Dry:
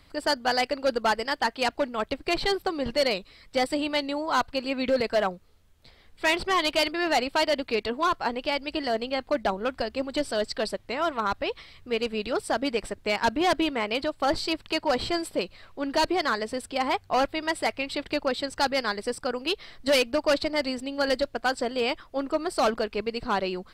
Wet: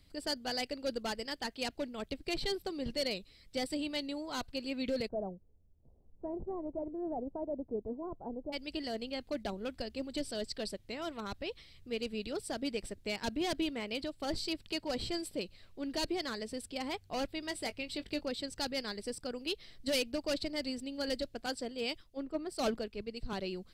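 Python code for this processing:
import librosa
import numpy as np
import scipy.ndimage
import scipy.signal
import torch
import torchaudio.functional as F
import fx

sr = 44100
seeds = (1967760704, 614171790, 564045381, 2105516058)

y = fx.steep_lowpass(x, sr, hz=900.0, slope=36, at=(5.07, 8.52), fade=0.02)
y = fx.doubler(y, sr, ms=20.0, db=-12.5, at=(17.42, 18.26))
y = fx.band_widen(y, sr, depth_pct=100, at=(21.46, 23.33))
y = fx.peak_eq(y, sr, hz=1100.0, db=-13.5, octaves=2.0)
y = y * 10.0 ** (-5.0 / 20.0)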